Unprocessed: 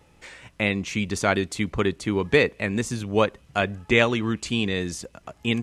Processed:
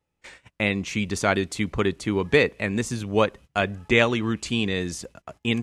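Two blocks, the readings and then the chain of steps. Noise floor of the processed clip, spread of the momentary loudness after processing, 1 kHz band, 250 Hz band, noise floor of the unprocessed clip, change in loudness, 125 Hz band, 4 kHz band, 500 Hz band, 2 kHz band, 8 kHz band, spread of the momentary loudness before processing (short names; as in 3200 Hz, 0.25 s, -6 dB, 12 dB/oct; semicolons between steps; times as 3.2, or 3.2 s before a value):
-78 dBFS, 8 LU, 0.0 dB, 0.0 dB, -57 dBFS, 0.0 dB, 0.0 dB, 0.0 dB, 0.0 dB, 0.0 dB, 0.0 dB, 11 LU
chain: gate -43 dBFS, range -23 dB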